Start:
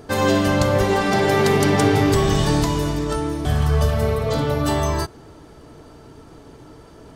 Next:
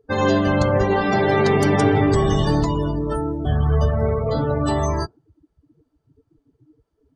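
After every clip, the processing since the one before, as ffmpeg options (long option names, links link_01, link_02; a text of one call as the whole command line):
ffmpeg -i in.wav -af "afftdn=noise_reduction=33:noise_floor=-27" out.wav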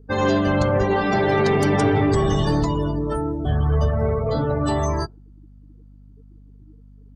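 ffmpeg -i in.wav -af "acontrast=73,aeval=exprs='val(0)+0.0126*(sin(2*PI*50*n/s)+sin(2*PI*2*50*n/s)/2+sin(2*PI*3*50*n/s)/3+sin(2*PI*4*50*n/s)/4+sin(2*PI*5*50*n/s)/5)':channel_layout=same,volume=-7dB" out.wav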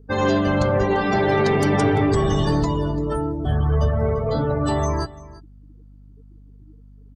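ffmpeg -i in.wav -af "aecho=1:1:342:0.106" out.wav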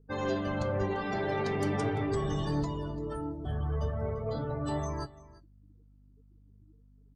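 ffmpeg -i in.wav -af "flanger=delay=6.1:depth=6.1:regen=72:speed=0.41:shape=triangular,volume=-8dB" out.wav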